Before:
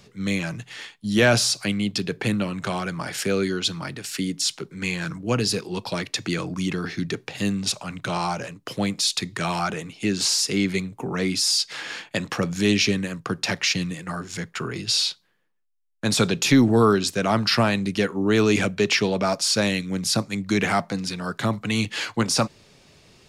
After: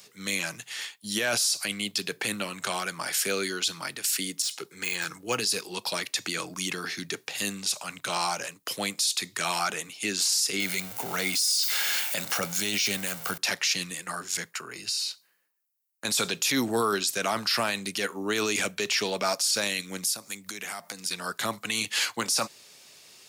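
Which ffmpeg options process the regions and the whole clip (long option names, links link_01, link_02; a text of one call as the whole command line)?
ffmpeg -i in.wav -filter_complex "[0:a]asettb=1/sr,asplit=3[link_01][link_02][link_03];[link_01]atrim=end=4.424[link_04];[link_02]atrim=start=4.42:end=5.37,asetpts=PTS-STARTPTS,afade=type=in:duration=0.004:curve=qsin,afade=type=out:start_time=0.946:duration=0.004:curve=qsin,deesser=0.7,aecho=1:1:2.4:0.33,atrim=end_sample=41895[link_05];[link_03]atrim=start=5.366[link_06];[link_04][link_05]acrossfade=duration=0.004:curve1=hsin:curve2=qsin[link_07];[link_07][link_06]acrossfade=duration=0.004:curve1=qsin:curve2=hsin,asettb=1/sr,asplit=3[link_08][link_09][link_10];[link_08]atrim=end=10.604[link_11];[link_09]atrim=start=10.6:end=13.38,asetpts=PTS-STARTPTS,afade=type=in:duration=0.004:curve=qsin,afade=type=out:start_time=2.776:duration=0.004:curve=qsin,aeval=exprs='val(0)+0.5*0.0211*sgn(val(0))':channel_layout=same,aecho=1:1:1.4:0.36,atrim=end_sample=122598[link_12];[link_10]atrim=start=13.376[link_13];[link_11][link_12]acrossfade=duration=0.004:curve1=hsin:curve2=qsin[link_14];[link_14][link_13]acrossfade=duration=0.004:curve1=qsin:curve2=hsin,asettb=1/sr,asplit=3[link_15][link_16][link_17];[link_15]atrim=end=14.524[link_18];[link_16]atrim=start=14.52:end=16.05,asetpts=PTS-STARTPTS,afade=type=in:duration=0.004:curve=qsin,afade=type=out:start_time=1.526:duration=0.004:curve=qsin,bandreject=frequency=3400:width=5.9,acompressor=threshold=-31dB:ratio=10:attack=3.2:release=140:knee=1:detection=peak[link_19];[link_17]atrim=start=16.046[link_20];[link_18][link_19]acrossfade=duration=0.004:curve1=hsin:curve2=qsin[link_21];[link_21][link_20]acrossfade=duration=0.004:curve1=qsin:curve2=hsin,asettb=1/sr,asplit=3[link_22][link_23][link_24];[link_22]atrim=end=20.054[link_25];[link_23]atrim=start=20.05:end=21.11,asetpts=PTS-STARTPTS,afade=type=in:duration=0.004:curve=qsin,afade=type=out:start_time=1.056:duration=0.004:curve=qsin,highshelf=frequency=7900:gain=8,bandreject=frequency=4100:width=21,acompressor=threshold=-32dB:ratio=6:attack=3.2:release=140:knee=1:detection=peak[link_26];[link_24]atrim=start=21.106[link_27];[link_25][link_26]acrossfade=duration=0.004:curve1=hsin:curve2=qsin[link_28];[link_28][link_27]acrossfade=duration=0.004:curve1=qsin:curve2=hsin,highpass=frequency=810:poles=1,aemphasis=mode=production:type=50fm,alimiter=limit=-16dB:level=0:latency=1:release=15" out.wav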